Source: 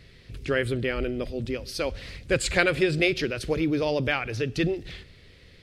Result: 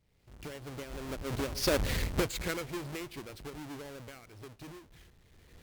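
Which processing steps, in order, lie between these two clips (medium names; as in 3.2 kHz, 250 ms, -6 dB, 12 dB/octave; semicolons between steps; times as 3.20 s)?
square wave that keeps the level; recorder AGC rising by 25 dB/s; Doppler pass-by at 1.88 s, 23 m/s, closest 2.9 m; trim -4.5 dB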